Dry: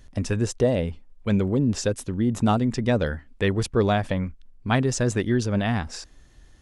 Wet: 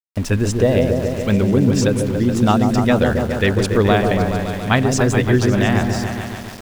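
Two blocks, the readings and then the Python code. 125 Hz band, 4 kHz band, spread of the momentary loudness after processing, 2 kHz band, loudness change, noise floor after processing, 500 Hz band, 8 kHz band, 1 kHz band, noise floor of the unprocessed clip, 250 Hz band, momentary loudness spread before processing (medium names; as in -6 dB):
+7.5 dB, +7.5 dB, 6 LU, +9.0 dB, +7.5 dB, -31 dBFS, +8.0 dB, +5.5 dB, +8.0 dB, -52 dBFS, +7.5 dB, 8 LU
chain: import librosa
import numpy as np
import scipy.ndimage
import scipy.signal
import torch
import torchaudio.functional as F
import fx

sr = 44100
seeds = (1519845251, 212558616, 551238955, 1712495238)

y = fx.dynamic_eq(x, sr, hz=2200.0, q=0.74, threshold_db=-38.0, ratio=4.0, max_db=4)
y = fx.echo_opening(y, sr, ms=141, hz=750, octaves=1, feedback_pct=70, wet_db=-3)
y = np.where(np.abs(y) >= 10.0 ** (-35.5 / 20.0), y, 0.0)
y = F.gain(torch.from_numpy(y), 4.5).numpy()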